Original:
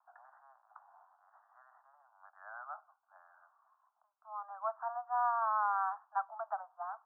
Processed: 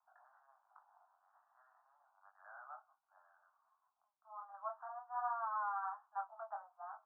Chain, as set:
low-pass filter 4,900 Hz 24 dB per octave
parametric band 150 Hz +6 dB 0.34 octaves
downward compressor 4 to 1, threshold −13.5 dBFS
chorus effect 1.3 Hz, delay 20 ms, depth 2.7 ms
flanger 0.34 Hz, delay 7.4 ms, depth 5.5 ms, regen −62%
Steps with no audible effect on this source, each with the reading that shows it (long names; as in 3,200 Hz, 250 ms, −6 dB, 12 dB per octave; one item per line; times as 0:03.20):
low-pass filter 4,900 Hz: nothing at its input above 1,700 Hz
parametric band 150 Hz: nothing at its input below 570 Hz
downward compressor, threshold −13.5 dBFS: peak of its input −22.0 dBFS